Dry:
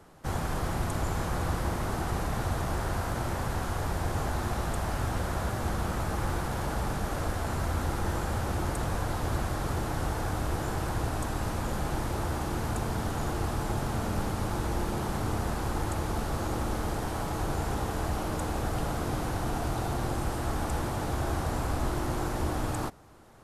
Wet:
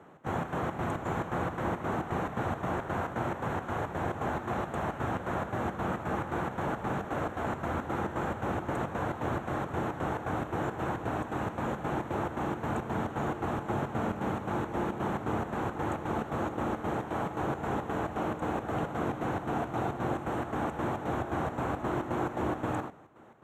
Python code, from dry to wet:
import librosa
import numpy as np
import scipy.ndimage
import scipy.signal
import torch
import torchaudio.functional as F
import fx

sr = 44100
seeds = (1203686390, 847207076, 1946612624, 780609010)

y = scipy.signal.sosfilt(scipy.signal.butter(2, 150.0, 'highpass', fs=sr, output='sos'), x)
y = fx.chopper(y, sr, hz=3.8, depth_pct=60, duty_pct=65)
y = np.convolve(y, np.full(9, 1.0 / 9))[:len(y)]
y = F.gain(torch.from_numpy(y), 3.0).numpy()